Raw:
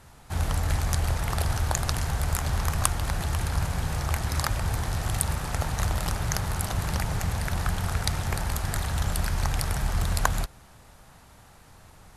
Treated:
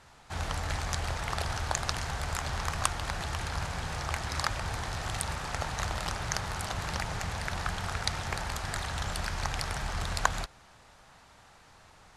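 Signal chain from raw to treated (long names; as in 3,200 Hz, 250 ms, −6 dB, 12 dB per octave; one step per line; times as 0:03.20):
low-pass filter 6,600 Hz 12 dB per octave
low-shelf EQ 390 Hz −9.5 dB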